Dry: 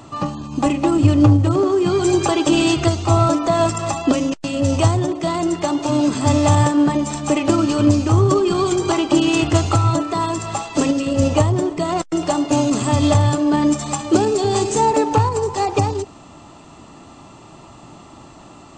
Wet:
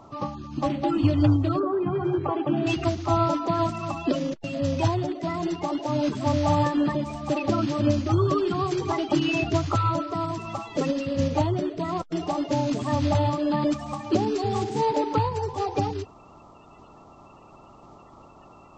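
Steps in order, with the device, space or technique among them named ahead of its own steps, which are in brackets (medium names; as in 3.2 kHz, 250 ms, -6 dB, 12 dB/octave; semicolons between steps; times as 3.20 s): 1.59–2.67 s: Chebyshev band-pass 120–1300 Hz, order 2; clip after many re-uploads (low-pass 5.2 kHz 24 dB/octave; coarse spectral quantiser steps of 30 dB); trim -7 dB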